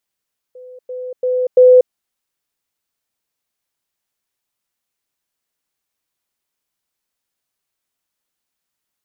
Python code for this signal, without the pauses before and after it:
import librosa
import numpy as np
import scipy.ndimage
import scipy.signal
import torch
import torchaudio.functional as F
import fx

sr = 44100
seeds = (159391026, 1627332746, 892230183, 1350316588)

y = fx.level_ladder(sr, hz=504.0, from_db=-34.0, step_db=10.0, steps=4, dwell_s=0.24, gap_s=0.1)